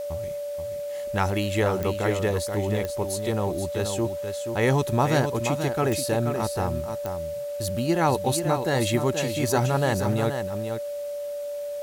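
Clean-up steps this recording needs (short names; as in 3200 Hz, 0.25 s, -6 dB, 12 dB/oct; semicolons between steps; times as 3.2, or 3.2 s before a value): de-click; notch 580 Hz, Q 30; noise print and reduce 30 dB; inverse comb 0.48 s -7.5 dB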